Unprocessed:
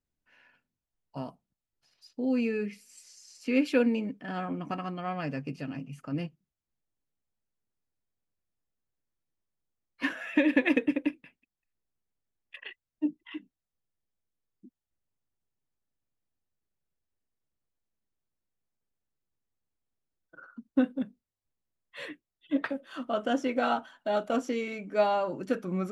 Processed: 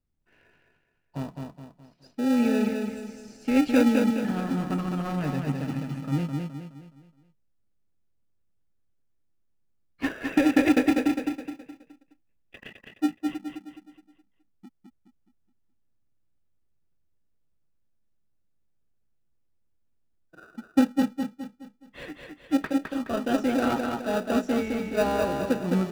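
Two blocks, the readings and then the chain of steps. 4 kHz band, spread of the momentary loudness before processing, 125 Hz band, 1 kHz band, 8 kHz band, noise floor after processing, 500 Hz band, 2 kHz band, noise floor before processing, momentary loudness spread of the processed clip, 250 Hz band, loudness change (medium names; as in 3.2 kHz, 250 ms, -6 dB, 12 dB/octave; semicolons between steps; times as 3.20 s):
+4.0 dB, 19 LU, +9.0 dB, +2.0 dB, no reading, -69 dBFS, +2.5 dB, +1.5 dB, under -85 dBFS, 20 LU, +6.5 dB, +4.5 dB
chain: bass shelf 220 Hz +7 dB; in parallel at -4 dB: sample-and-hold 41×; on the sum: treble shelf 4.6 kHz -5 dB; feedback delay 210 ms, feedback 41%, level -4 dB; trim -1.5 dB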